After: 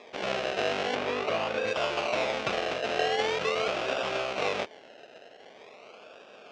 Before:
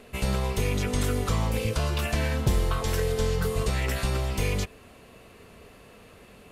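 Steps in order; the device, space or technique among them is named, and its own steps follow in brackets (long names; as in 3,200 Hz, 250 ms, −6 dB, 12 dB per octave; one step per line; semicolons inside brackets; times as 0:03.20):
circuit-bent sampling toy (sample-and-hold swept by an LFO 30×, swing 60% 0.44 Hz; loudspeaker in its box 540–5,200 Hz, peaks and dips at 620 Hz +4 dB, 960 Hz −7 dB, 1,800 Hz −4 dB, 2,600 Hz +5 dB, 4,500 Hz −4 dB)
0:00.95–0:01.67: high-shelf EQ 3,700 Hz −8 dB
level +5.5 dB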